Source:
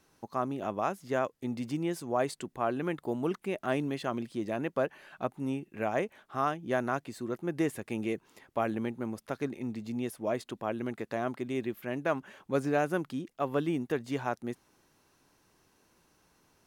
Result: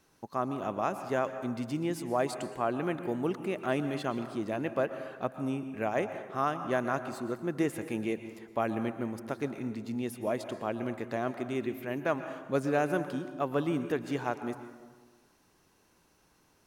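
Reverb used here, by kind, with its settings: plate-style reverb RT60 1.4 s, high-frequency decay 0.5×, pre-delay 105 ms, DRR 9.5 dB

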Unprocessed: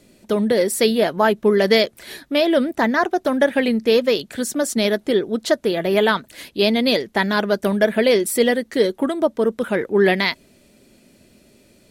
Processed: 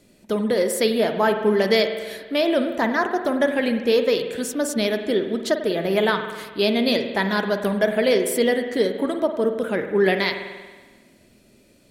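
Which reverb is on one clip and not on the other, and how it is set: spring tank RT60 1.4 s, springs 47 ms, chirp 60 ms, DRR 6.5 dB; trim -3.5 dB

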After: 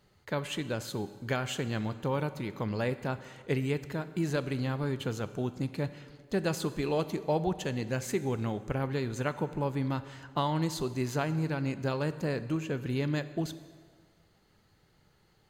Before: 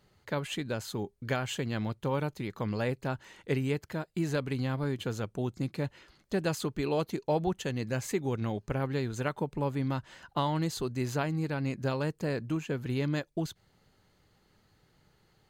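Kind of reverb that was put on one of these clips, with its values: plate-style reverb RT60 1.7 s, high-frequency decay 0.8×, DRR 12 dB

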